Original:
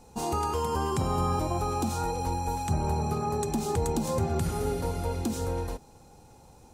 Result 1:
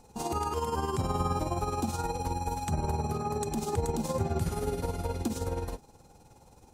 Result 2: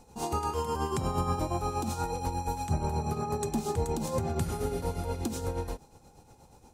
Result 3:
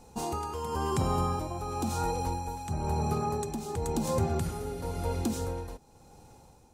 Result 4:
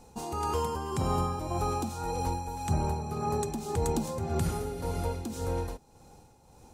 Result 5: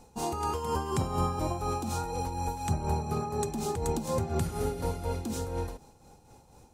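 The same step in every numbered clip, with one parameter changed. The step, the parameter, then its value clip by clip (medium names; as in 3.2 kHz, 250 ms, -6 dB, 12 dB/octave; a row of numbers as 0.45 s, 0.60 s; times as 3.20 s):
tremolo, rate: 19 Hz, 8.4 Hz, 0.96 Hz, 1.8 Hz, 4.1 Hz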